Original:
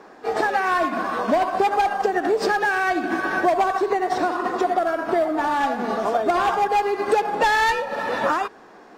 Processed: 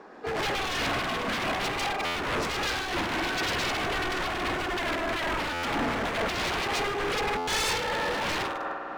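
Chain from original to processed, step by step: high shelf 7400 Hz -11 dB; spring tank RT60 2.6 s, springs 49 ms, chirp 25 ms, DRR 3.5 dB; dynamic EQ 290 Hz, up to +6 dB, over -36 dBFS, Q 2.4; 3.16–4.95 HPF 110 Hz 24 dB/oct; on a send: thin delay 69 ms, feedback 65%, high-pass 1600 Hz, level -11 dB; on the sum: wavefolder -21.5 dBFS; stuck buffer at 2.05/5.53/7.37, samples 512, times 8; noise-modulated level, depth 55%

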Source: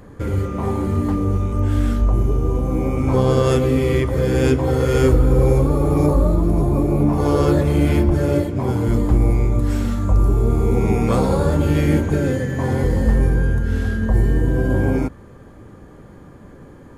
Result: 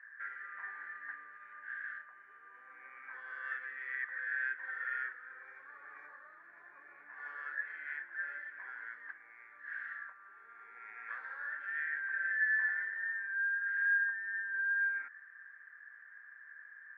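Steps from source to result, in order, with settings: compressor, threshold -18 dBFS, peak gain reduction 8.5 dB; Butterworth band-pass 1700 Hz, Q 5.8; gain +8 dB

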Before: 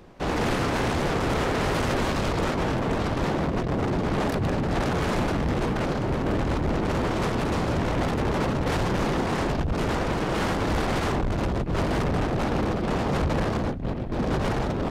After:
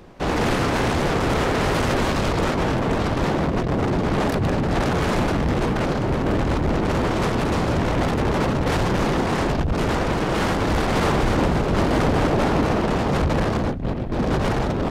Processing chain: 10.7–12.87 frequency-shifting echo 0.248 s, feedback 49%, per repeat +130 Hz, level -4 dB; gain +4 dB

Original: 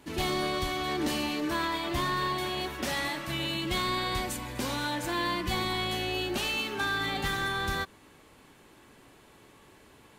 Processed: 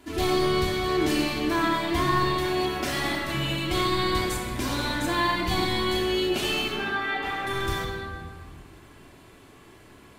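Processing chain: 6.76–7.47 three-band isolator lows -15 dB, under 300 Hz, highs -15 dB, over 3000 Hz; reverb RT60 1.7 s, pre-delay 3 ms, DRR -2.5 dB

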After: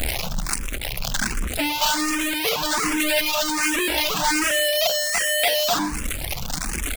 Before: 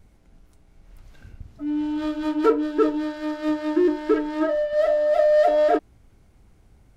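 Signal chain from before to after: notches 50/100/150/200/250/300/350/400 Hz; power-law curve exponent 0.35; soft clip -24.5 dBFS, distortion -7 dB; high shelf 3100 Hz +10 dB; reverb removal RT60 1.3 s; fifteen-band EQ 100 Hz -11 dB, 400 Hz -7 dB, 2500 Hz +4 dB; feedback echo 0.124 s, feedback 58%, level -21.5 dB; in parallel at -6 dB: bit-crush 5-bit; on the sum: endless phaser +1.3 Hz; gain +4 dB

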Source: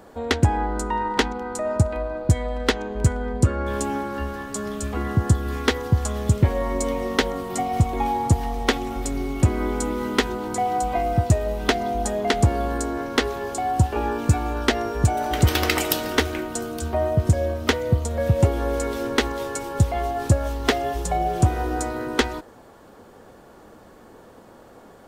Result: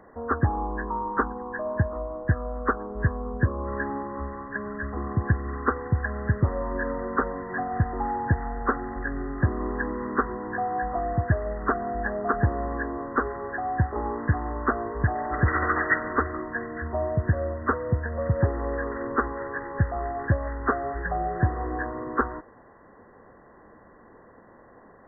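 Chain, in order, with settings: nonlinear frequency compression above 1000 Hz 4:1; gain -5 dB

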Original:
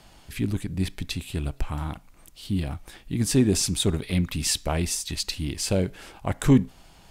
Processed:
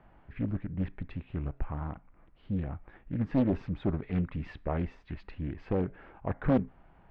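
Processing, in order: one-sided fold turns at -14 dBFS; LPF 1900 Hz 24 dB/oct; Doppler distortion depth 0.96 ms; gain -5.5 dB

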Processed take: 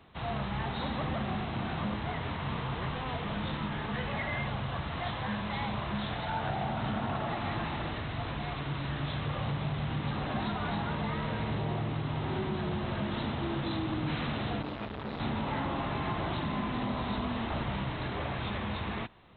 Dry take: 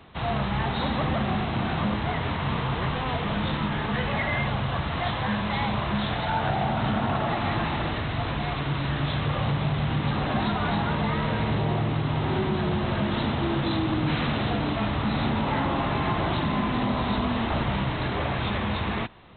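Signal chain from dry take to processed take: 14.62–15.2 core saturation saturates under 550 Hz; gain -7.5 dB

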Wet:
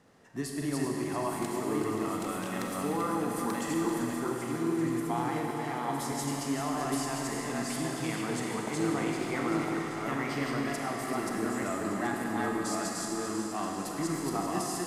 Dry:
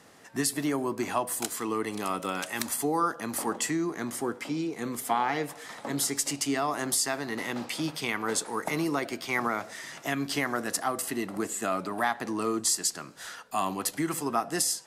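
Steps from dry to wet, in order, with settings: reverse delay 0.612 s, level -1 dB; tilt -2 dB/oct; thinning echo 0.389 s, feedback 73%, level -9.5 dB; Schroeder reverb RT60 3.2 s, combs from 33 ms, DRR 0 dB; gain -8.5 dB

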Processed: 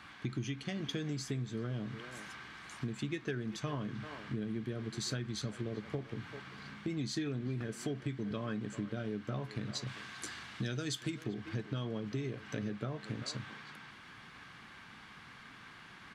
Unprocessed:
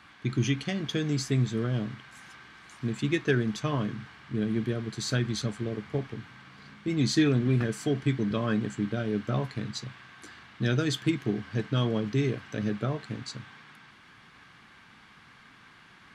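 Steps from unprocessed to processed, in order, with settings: 9.87–11.24 bell 8300 Hz +8.5 dB 2.1 oct; speakerphone echo 0.39 s, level -17 dB; compressor 6:1, threshold -36 dBFS, peak gain reduction 16 dB; gain +1 dB

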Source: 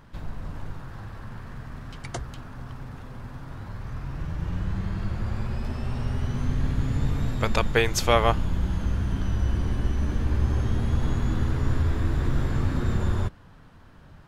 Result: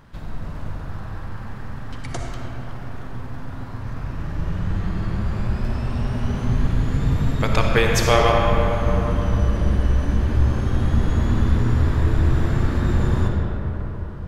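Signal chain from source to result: digital reverb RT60 4.6 s, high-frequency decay 0.4×, pre-delay 20 ms, DRR -0.5 dB; gain +2 dB

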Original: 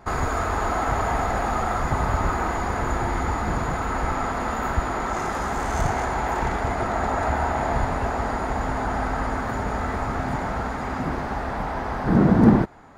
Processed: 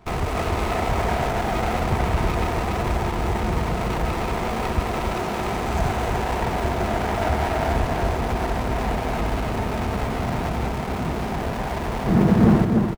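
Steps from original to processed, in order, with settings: in parallel at -10 dB: Schmitt trigger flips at -32.5 dBFS; on the sum: notch comb 280 Hz; on a send: echo 0.29 s -4.5 dB; on the sum: running maximum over 17 samples

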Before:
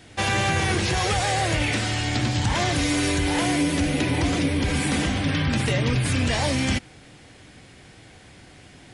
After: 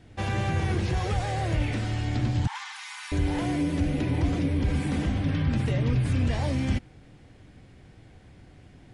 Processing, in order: 2.47–3.12 brick-wall FIR high-pass 770 Hz; tilt -2.5 dB/oct; gain -8.5 dB

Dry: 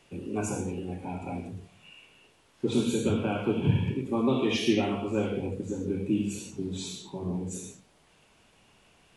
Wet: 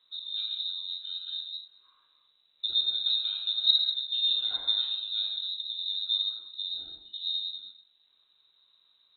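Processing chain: EQ curve 260 Hz 0 dB, 450 Hz -15 dB, 700 Hz -17 dB; inverted band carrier 3900 Hz

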